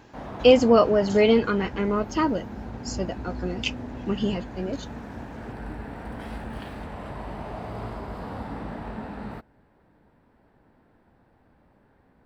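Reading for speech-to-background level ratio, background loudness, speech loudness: 14.0 dB, -37.0 LUFS, -23.0 LUFS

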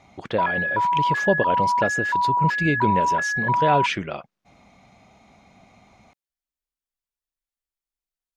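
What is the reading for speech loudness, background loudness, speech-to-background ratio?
-26.0 LUFS, -22.0 LUFS, -4.0 dB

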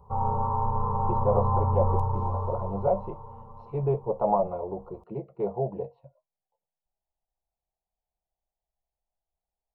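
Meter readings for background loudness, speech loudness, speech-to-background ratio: -28.0 LUFS, -30.0 LUFS, -2.0 dB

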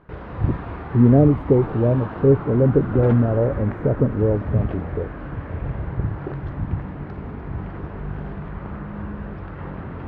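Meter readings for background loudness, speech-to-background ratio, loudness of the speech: -30.0 LUFS, 11.0 dB, -19.0 LUFS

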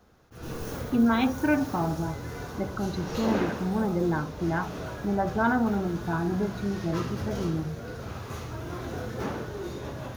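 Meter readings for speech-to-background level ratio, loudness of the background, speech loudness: 8.0 dB, -36.5 LUFS, -28.5 LUFS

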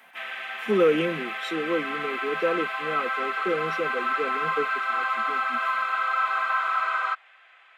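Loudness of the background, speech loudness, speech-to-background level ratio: -27.0 LUFS, -28.5 LUFS, -1.5 dB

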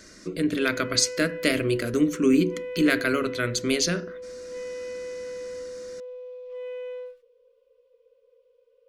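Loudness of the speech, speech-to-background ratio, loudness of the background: -24.0 LUFS, 13.0 dB, -37.0 LUFS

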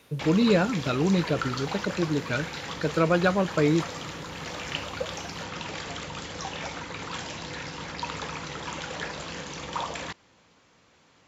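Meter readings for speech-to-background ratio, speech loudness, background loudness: 9.5 dB, -25.5 LUFS, -35.0 LUFS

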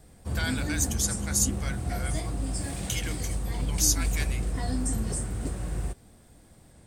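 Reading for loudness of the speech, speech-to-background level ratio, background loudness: -29.5 LUFS, 2.0 dB, -31.5 LUFS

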